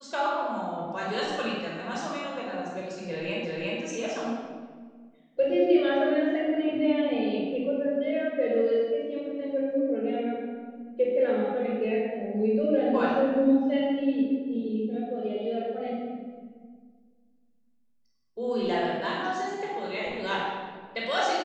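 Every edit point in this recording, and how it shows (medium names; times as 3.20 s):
3.45 s: repeat of the last 0.36 s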